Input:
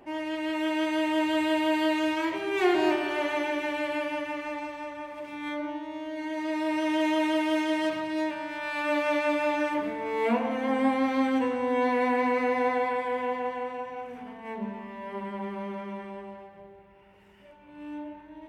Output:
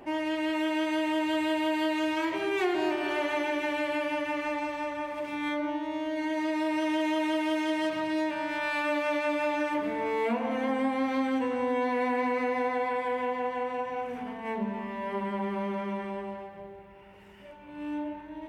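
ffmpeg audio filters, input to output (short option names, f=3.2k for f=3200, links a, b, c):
-af "acompressor=threshold=-32dB:ratio=3,volume=4.5dB"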